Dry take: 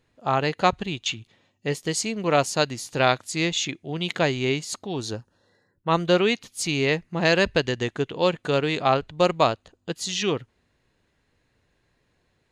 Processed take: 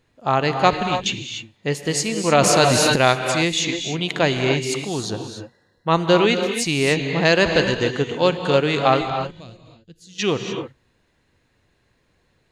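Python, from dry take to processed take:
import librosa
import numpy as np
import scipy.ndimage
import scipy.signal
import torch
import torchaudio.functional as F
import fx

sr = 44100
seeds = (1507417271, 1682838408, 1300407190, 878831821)

y = fx.tone_stack(x, sr, knobs='10-0-1', at=(9.15, 10.18), fade=0.02)
y = fx.rev_gated(y, sr, seeds[0], gate_ms=320, shape='rising', drr_db=5.5)
y = fx.env_flatten(y, sr, amount_pct=70, at=(2.32, 2.96))
y = F.gain(torch.from_numpy(y), 3.5).numpy()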